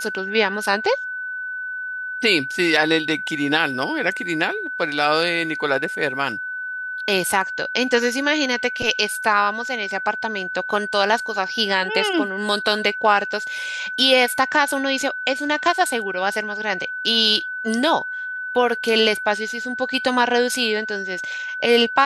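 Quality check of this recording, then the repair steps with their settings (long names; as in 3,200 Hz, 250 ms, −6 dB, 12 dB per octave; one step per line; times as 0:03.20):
whistle 1,500 Hz −26 dBFS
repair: notch filter 1,500 Hz, Q 30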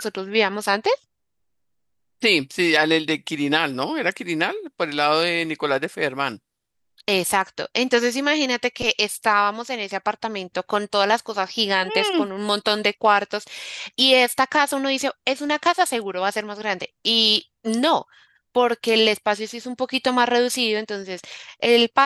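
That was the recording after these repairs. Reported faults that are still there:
none of them is left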